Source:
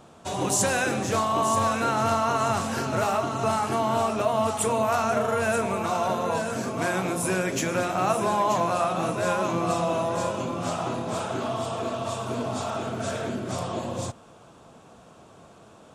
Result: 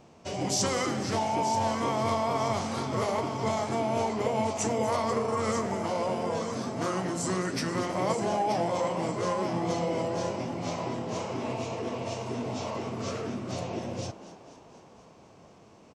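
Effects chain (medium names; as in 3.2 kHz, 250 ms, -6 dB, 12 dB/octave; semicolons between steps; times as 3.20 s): formant shift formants -4 st; frequency-shifting echo 242 ms, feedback 64%, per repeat +82 Hz, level -15.5 dB; trim -4 dB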